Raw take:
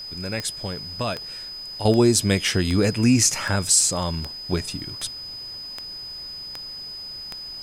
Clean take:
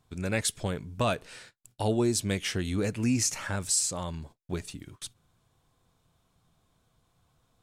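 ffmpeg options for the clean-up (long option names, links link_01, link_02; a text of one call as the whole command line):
ffmpeg -i in.wav -af "adeclick=threshold=4,bandreject=frequency=5000:width=30,agate=range=-21dB:threshold=-28dB,asetnsamples=nb_out_samples=441:pad=0,asendcmd='1.85 volume volume -9dB',volume=0dB" out.wav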